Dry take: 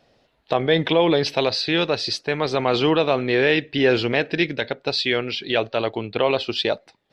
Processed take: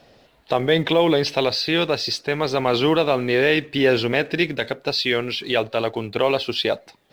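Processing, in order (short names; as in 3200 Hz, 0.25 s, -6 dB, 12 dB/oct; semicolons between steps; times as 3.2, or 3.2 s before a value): G.711 law mismatch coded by mu; wow and flutter 26 cents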